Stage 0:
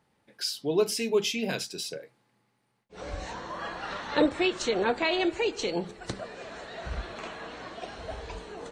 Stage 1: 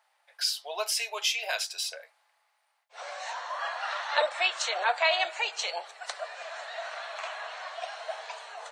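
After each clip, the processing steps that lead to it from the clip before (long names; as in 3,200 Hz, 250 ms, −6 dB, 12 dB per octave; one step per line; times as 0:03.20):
elliptic high-pass filter 640 Hz, stop band 60 dB
level +4 dB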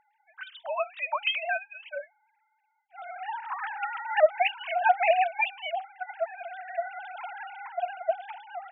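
three sine waves on the formant tracks
level +2.5 dB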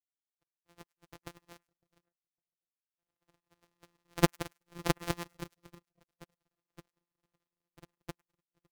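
samples sorted by size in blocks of 256 samples
echo with a time of its own for lows and highs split 770 Hz, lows 556 ms, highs 103 ms, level −11 dB
power curve on the samples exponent 3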